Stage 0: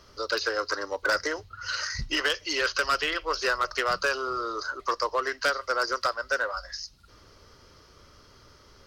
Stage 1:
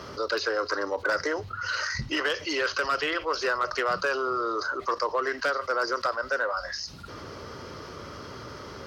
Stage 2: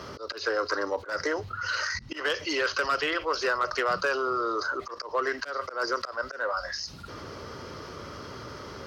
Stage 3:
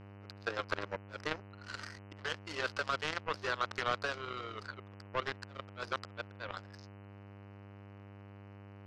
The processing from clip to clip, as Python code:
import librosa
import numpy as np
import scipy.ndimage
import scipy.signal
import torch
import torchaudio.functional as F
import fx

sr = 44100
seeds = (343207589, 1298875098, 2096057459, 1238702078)

y1 = scipy.signal.sosfilt(scipy.signal.butter(2, 110.0, 'highpass', fs=sr, output='sos'), x)
y1 = fx.high_shelf(y1, sr, hz=2800.0, db=-11.0)
y1 = fx.env_flatten(y1, sr, amount_pct=50)
y2 = fx.auto_swell(y1, sr, attack_ms=153.0)
y3 = fx.power_curve(y2, sr, exponent=3.0)
y3 = fx.dmg_buzz(y3, sr, base_hz=100.0, harmonics=30, level_db=-53.0, tilt_db=-6, odd_only=False)
y3 = scipy.signal.sosfilt(scipy.signal.butter(2, 5000.0, 'lowpass', fs=sr, output='sos'), y3)
y3 = y3 * 10.0 ** (1.0 / 20.0)